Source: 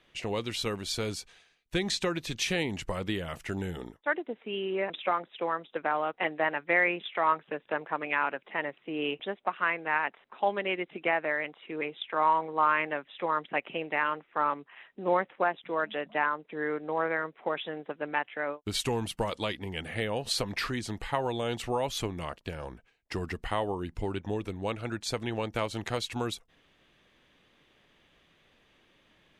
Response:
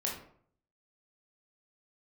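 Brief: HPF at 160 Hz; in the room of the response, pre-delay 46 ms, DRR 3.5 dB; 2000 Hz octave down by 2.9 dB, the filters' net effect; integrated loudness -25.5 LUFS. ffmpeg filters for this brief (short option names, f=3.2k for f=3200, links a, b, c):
-filter_complex "[0:a]highpass=160,equalizer=f=2k:t=o:g=-3.5,asplit=2[a][b];[1:a]atrim=start_sample=2205,adelay=46[c];[b][c]afir=irnorm=-1:irlink=0,volume=-7dB[d];[a][d]amix=inputs=2:normalize=0,volume=5.5dB"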